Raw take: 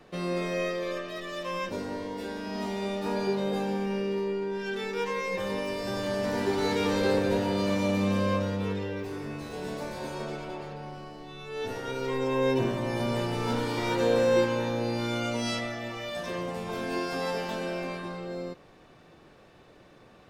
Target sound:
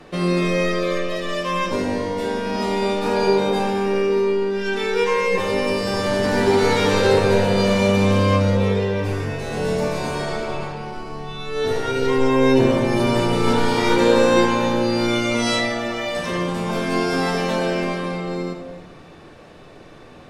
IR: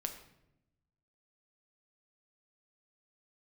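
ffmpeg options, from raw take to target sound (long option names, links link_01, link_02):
-filter_complex "[0:a]asettb=1/sr,asplit=3[link_01][link_02][link_03];[link_01]atrim=end=8.904[link_04];[link_02]atrim=start=8.9:end=10.64,asetpts=PTS-STARTPTS,afade=type=in:duration=0.004:curve=qsin,afade=type=out:start_time=1.736:duration=0.004:curve=qsin,asplit=2[link_05][link_06];[link_06]adelay=39,volume=-6dB[link_07];[link_05][link_07]amix=inputs=2:normalize=0,atrim=end_sample=76734[link_08];[link_03]atrim=start=10.636[link_09];[link_04][link_08]acrossfade=duration=0.004:curve1=hsin:curve2=qsin[link_10];[link_10][link_09]acrossfade=duration=0.004:curve1=qsin:curve2=hsin[link_11];[1:a]atrim=start_sample=2205,afade=type=out:start_time=0.32:duration=0.01,atrim=end_sample=14553,asetrate=22491,aresample=44100[link_12];[link_11][link_12]afir=irnorm=-1:irlink=0,volume=7.5dB"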